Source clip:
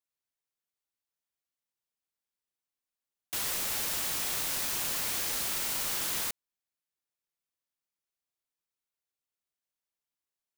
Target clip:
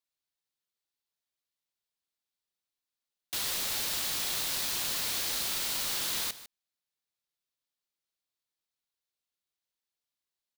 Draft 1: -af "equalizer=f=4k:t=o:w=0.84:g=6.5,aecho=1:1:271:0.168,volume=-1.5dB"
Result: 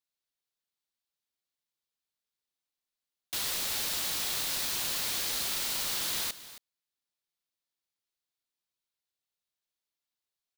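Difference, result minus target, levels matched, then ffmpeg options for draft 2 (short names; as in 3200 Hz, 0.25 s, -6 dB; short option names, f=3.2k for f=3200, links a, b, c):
echo 0.12 s late
-af "equalizer=f=4k:t=o:w=0.84:g=6.5,aecho=1:1:151:0.168,volume=-1.5dB"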